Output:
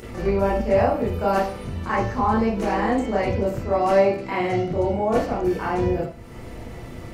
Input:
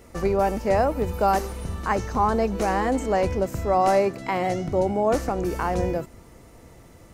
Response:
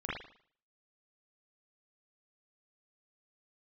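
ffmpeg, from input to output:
-filter_complex "[0:a]acompressor=mode=upward:threshold=0.0447:ratio=2.5[s0];[1:a]atrim=start_sample=2205,asetrate=61740,aresample=44100[s1];[s0][s1]afir=irnorm=-1:irlink=0"

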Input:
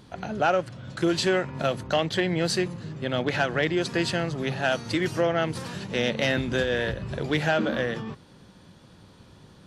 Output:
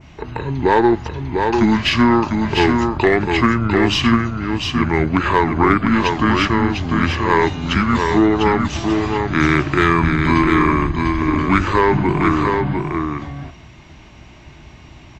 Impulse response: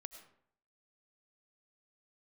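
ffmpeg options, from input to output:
-filter_complex "[0:a]asplit=2[s0][s1];[1:a]atrim=start_sample=2205,atrim=end_sample=3969[s2];[s1][s2]afir=irnorm=-1:irlink=0,volume=0.841[s3];[s0][s3]amix=inputs=2:normalize=0,aeval=exprs='0.398*(cos(1*acos(clip(val(0)/0.398,-1,1)))-cos(1*PI/2))+0.00631*(cos(8*acos(clip(val(0)/0.398,-1,1)))-cos(8*PI/2))':c=same,equalizer=f=160:t=o:w=0.33:g=-9,equalizer=f=315:t=o:w=0.33:g=-5,equalizer=f=800:t=o:w=0.33:g=-11,asetrate=28048,aresample=44100,adynamicequalizer=threshold=0.00891:dfrequency=3900:dqfactor=0.85:tfrequency=3900:tqfactor=0.85:attack=5:release=100:ratio=0.375:range=2:mode=cutabove:tftype=bell,asplit=2[s4][s5];[s5]aecho=0:1:699:0.596[s6];[s4][s6]amix=inputs=2:normalize=0,volume=2.51"

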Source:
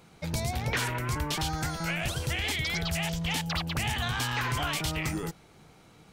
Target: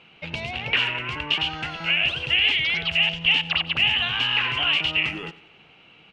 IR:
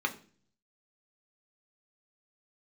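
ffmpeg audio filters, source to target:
-af "lowpass=f=2800:t=q:w=11,lowshelf=f=130:g=-11,aecho=1:1:92|184|276|368:0.119|0.0547|0.0251|0.0116"

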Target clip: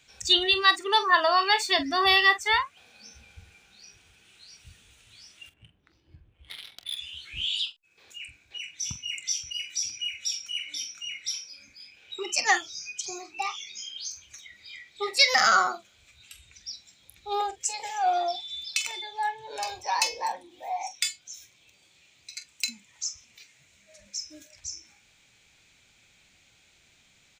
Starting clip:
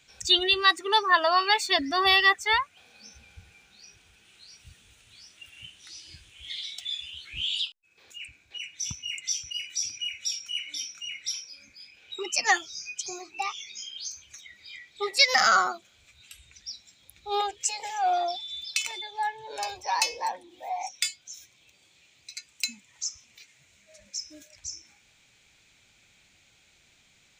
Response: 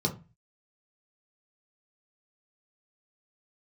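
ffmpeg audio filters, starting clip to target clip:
-filter_complex "[0:a]asettb=1/sr,asplit=3[s0][s1][s2];[s0]atrim=end=5.494[s3];[s1]atrim=start=5.49:end=6.97,asetpts=PTS-STARTPTS,afade=t=in:d=0.004:c=qsin,afade=t=out:st=1.476:d=0.004:c=qsin,adynamicsmooth=sensitivity=6.5:basefreq=570[s4];[s2]atrim=start=6.966[s5];[s3][s4]acrossfade=d=0.004:c1=hsin:c2=qsin[s6];[s6][s5]acrossfade=d=0.004:c1=qsin:c2=hsin,asettb=1/sr,asplit=3[s7][s8][s9];[s7]atrim=end=17.334[s10];[s8]atrim=start=17.33:end=17.74,asetpts=PTS-STARTPTS,afade=t=in:d=0.004:c=qsin,afade=t=out:st=0.406:d=0.004:c=qsin,equalizer=f=3200:t=o:w=1.3:g=-7.5[s11];[s9]atrim=start=17.736[s12];[s10][s11]acrossfade=d=0.004:c1=hsin:c2=qsin[s13];[s13][s12]acrossfade=d=0.004:c1=qsin:c2=hsin,aecho=1:1:26|45:0.158|0.224"

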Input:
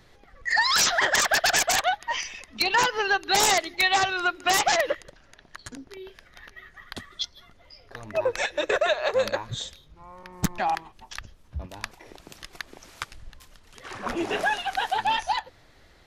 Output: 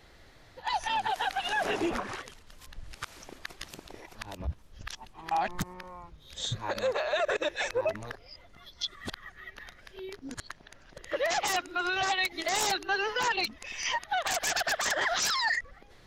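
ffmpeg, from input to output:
-af "areverse,alimiter=limit=0.0944:level=0:latency=1:release=81"

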